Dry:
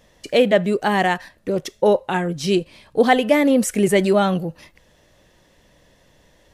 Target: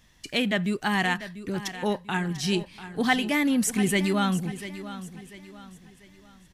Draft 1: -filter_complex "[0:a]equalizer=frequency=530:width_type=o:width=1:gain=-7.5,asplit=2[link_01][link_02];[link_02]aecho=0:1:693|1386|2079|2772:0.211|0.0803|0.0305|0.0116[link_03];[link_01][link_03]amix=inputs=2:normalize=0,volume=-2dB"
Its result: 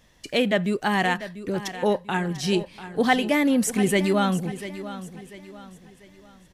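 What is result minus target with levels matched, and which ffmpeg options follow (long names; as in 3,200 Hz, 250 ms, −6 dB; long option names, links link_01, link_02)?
500 Hz band +4.0 dB
-filter_complex "[0:a]equalizer=frequency=530:width_type=o:width=1:gain=-17,asplit=2[link_01][link_02];[link_02]aecho=0:1:693|1386|2079|2772:0.211|0.0803|0.0305|0.0116[link_03];[link_01][link_03]amix=inputs=2:normalize=0,volume=-2dB"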